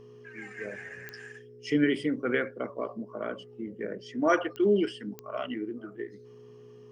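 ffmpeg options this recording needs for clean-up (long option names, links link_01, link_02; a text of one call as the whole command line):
ffmpeg -i in.wav -af "adeclick=threshold=4,bandreject=frequency=121.5:width_type=h:width=4,bandreject=frequency=243:width_type=h:width=4,bandreject=frequency=364.5:width_type=h:width=4,bandreject=frequency=486:width_type=h:width=4,bandreject=frequency=420:width=30" out.wav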